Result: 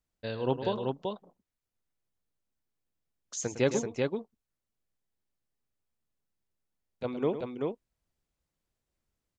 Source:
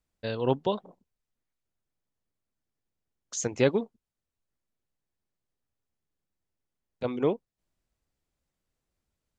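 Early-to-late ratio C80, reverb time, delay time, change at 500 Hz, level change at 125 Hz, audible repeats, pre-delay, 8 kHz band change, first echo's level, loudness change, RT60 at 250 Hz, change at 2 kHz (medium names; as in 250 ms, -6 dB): no reverb, no reverb, 108 ms, -1.5 dB, -1.5 dB, 2, no reverb, -1.5 dB, -11.5 dB, -3.5 dB, no reverb, -1.5 dB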